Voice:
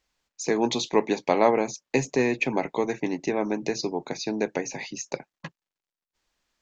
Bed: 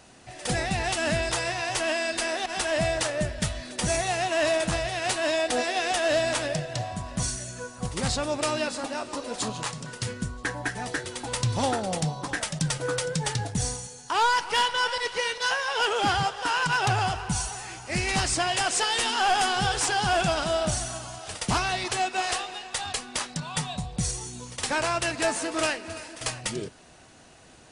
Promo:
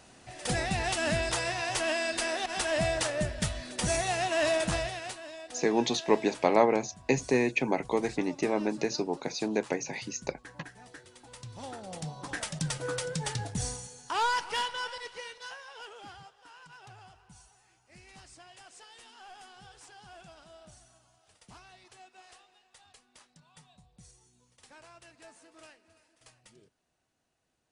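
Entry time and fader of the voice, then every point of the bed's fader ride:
5.15 s, -2.5 dB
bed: 4.82 s -3 dB
5.27 s -19 dB
11.50 s -19 dB
12.40 s -5.5 dB
14.38 s -5.5 dB
16.42 s -27.5 dB

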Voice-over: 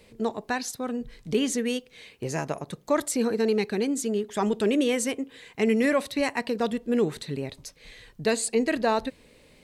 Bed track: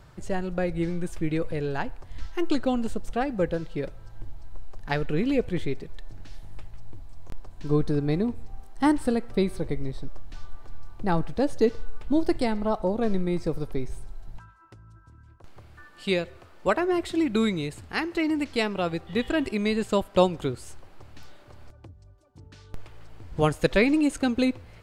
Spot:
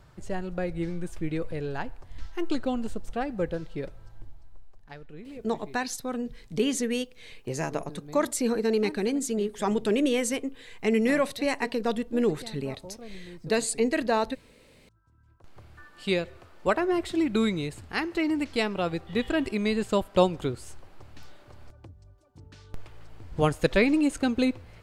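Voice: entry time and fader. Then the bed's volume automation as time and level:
5.25 s, -1.0 dB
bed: 4.06 s -3.5 dB
4.98 s -18.5 dB
14.82 s -18.5 dB
15.62 s -1 dB

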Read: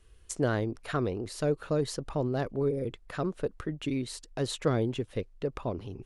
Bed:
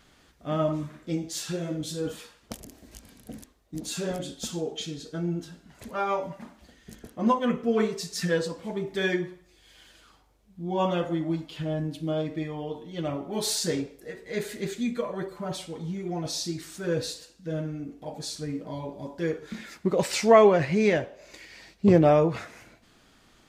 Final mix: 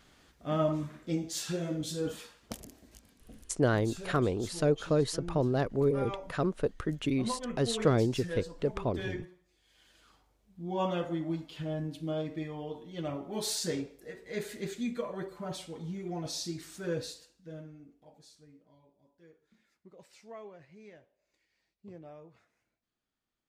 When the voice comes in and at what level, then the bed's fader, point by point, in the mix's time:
3.20 s, +1.5 dB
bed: 2.57 s -2.5 dB
3.22 s -12.5 dB
9.68 s -12.5 dB
10.11 s -5.5 dB
16.87 s -5.5 dB
18.95 s -30.5 dB

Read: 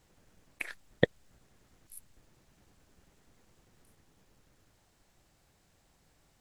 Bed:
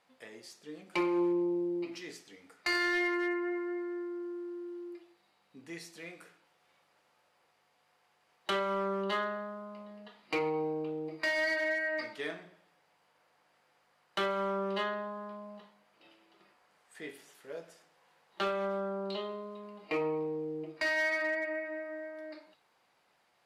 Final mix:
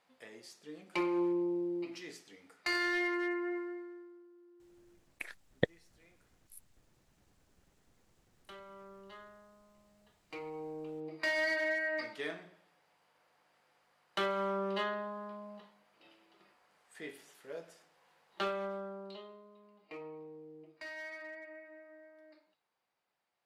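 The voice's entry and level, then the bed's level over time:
4.60 s, -5.0 dB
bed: 3.57 s -2.5 dB
4.30 s -20 dB
9.82 s -20 dB
11.28 s -1.5 dB
18.36 s -1.5 dB
19.43 s -14.5 dB

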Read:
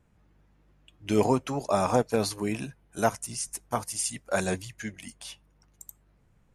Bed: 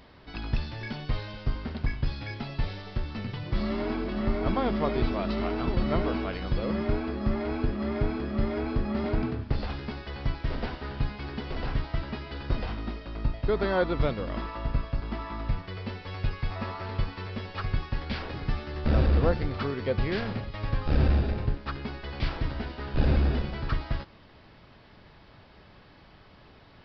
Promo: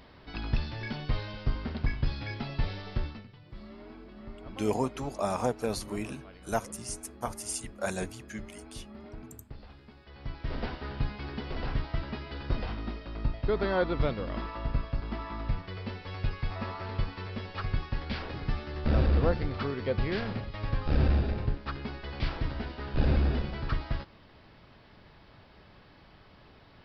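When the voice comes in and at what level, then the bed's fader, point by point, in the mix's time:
3.50 s, -5.5 dB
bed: 3.06 s -0.5 dB
3.28 s -17.5 dB
9.94 s -17.5 dB
10.58 s -2 dB

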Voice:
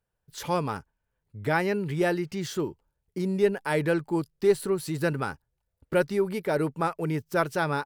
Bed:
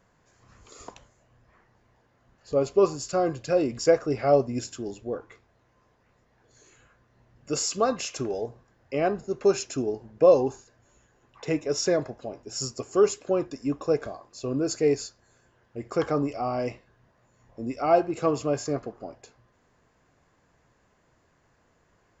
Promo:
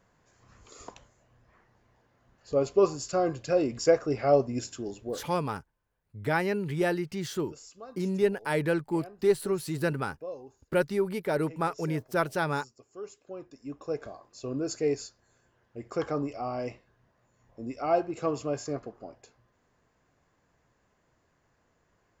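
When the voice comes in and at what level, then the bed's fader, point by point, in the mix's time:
4.80 s, -2.0 dB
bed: 5.09 s -2 dB
5.60 s -22 dB
12.94 s -22 dB
14.19 s -5 dB

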